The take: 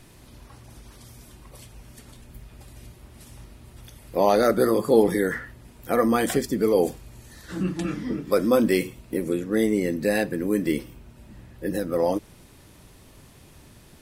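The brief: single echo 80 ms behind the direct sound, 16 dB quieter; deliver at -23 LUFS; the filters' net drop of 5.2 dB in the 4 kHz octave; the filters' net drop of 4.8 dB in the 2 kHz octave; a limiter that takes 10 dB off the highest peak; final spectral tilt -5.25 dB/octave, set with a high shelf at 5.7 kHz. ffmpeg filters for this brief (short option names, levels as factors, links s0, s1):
-af "equalizer=f=2000:t=o:g=-5,equalizer=f=4000:t=o:g=-7.5,highshelf=f=5700:g=5.5,alimiter=limit=0.188:level=0:latency=1,aecho=1:1:80:0.158,volume=1.5"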